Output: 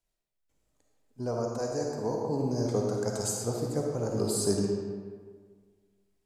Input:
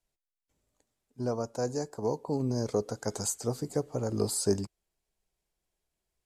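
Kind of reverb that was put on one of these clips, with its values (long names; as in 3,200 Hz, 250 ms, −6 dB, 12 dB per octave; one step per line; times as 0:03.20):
comb and all-pass reverb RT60 1.7 s, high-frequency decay 0.65×, pre-delay 15 ms, DRR −0.5 dB
level −1.5 dB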